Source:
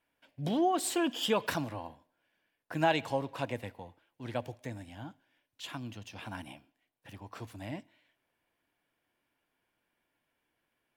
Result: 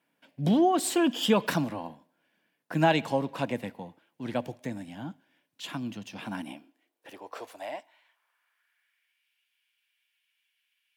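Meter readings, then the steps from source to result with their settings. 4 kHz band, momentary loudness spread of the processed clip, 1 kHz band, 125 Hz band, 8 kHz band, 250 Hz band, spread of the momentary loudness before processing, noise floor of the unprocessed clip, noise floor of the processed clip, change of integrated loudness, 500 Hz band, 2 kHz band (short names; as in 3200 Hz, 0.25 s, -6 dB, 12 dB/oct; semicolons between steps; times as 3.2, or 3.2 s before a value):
+3.5 dB, 19 LU, +4.0 dB, +6.0 dB, +3.5 dB, +7.5 dB, 20 LU, -82 dBFS, -79 dBFS, +5.5 dB, +5.0 dB, +3.5 dB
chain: high-pass sweep 180 Hz -> 2700 Hz, 6.22–9.28; gain +3.5 dB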